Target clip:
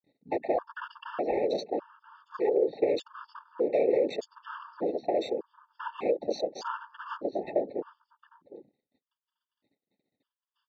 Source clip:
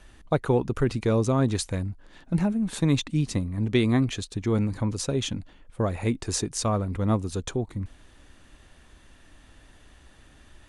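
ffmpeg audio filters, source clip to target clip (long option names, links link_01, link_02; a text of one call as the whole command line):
ffmpeg -i in.wav -filter_complex "[0:a]afreqshift=210,aresample=11025,asoftclip=type=hard:threshold=-21.5dB,aresample=44100,acrossover=split=360|2500[link_01][link_02][link_03];[link_01]acompressor=threshold=-41dB:ratio=4[link_04];[link_02]acompressor=threshold=-29dB:ratio=4[link_05];[link_03]acompressor=threshold=-48dB:ratio=4[link_06];[link_04][link_05][link_06]amix=inputs=3:normalize=0,aemphasis=mode=production:type=75fm,afftfilt=real='hypot(re,im)*cos(2*PI*random(0))':imag='hypot(re,im)*sin(2*PI*random(1))':win_size=512:overlap=0.75,agate=range=-36dB:threshold=-54dB:ratio=16:detection=peak,equalizer=frequency=500:width_type=o:width=1:gain=11,equalizer=frequency=1000:width_type=o:width=1:gain=6,equalizer=frequency=4000:width_type=o:width=1:gain=5,afwtdn=0.00794,asplit=2[link_07][link_08];[link_08]adelay=758,volume=-14dB,highshelf=frequency=4000:gain=-17.1[link_09];[link_07][link_09]amix=inputs=2:normalize=0,afftfilt=real='re*gt(sin(2*PI*0.83*pts/sr)*(1-2*mod(floor(b*sr/1024/900),2)),0)':imag='im*gt(sin(2*PI*0.83*pts/sr)*(1-2*mod(floor(b*sr/1024/900),2)),0)':win_size=1024:overlap=0.75,volume=1.5dB" out.wav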